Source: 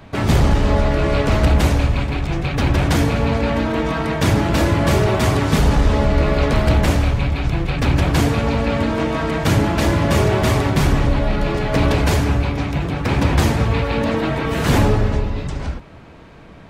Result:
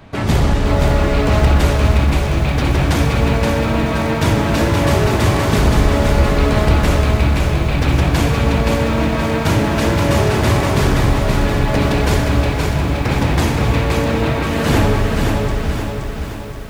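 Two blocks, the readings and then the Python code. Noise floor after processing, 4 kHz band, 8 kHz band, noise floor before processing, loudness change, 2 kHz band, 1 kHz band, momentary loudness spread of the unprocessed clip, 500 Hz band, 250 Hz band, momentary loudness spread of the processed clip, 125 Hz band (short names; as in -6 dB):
-23 dBFS, +2.5 dB, +3.0 dB, -40 dBFS, +2.0 dB, +2.5 dB, +2.5 dB, 5 LU, +2.0 dB, +1.5 dB, 3 LU, +2.0 dB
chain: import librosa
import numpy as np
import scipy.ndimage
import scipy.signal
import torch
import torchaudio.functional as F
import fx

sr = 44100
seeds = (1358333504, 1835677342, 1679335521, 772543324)

p1 = x + fx.echo_thinned(x, sr, ms=62, feedback_pct=84, hz=380.0, wet_db=-12.0, dry=0)
y = fx.echo_crushed(p1, sr, ms=523, feedback_pct=55, bits=7, wet_db=-4)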